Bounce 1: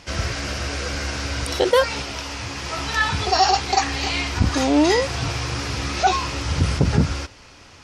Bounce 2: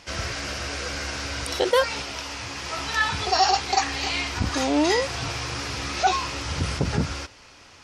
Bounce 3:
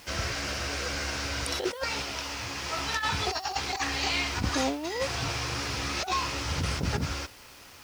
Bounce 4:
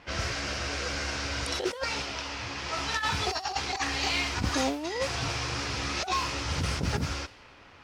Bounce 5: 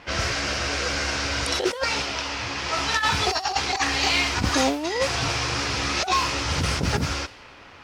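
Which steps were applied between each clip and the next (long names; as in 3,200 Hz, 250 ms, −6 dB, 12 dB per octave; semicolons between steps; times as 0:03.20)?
low-shelf EQ 320 Hz −6 dB; level −2 dB
compressor whose output falls as the input rises −24 dBFS, ratio −0.5; bit reduction 8 bits; level −3.5 dB
low-pass that shuts in the quiet parts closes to 2,300 Hz, open at −24.5 dBFS
low-shelf EQ 220 Hz −3 dB; level +7 dB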